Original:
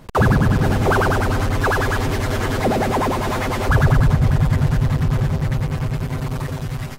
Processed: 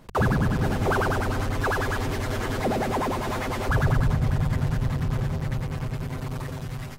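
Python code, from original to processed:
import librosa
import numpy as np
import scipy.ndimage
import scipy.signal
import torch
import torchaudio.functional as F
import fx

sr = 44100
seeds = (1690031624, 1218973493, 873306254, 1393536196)

y = fx.hum_notches(x, sr, base_hz=50, count=3)
y = y * 10.0 ** (-6.5 / 20.0)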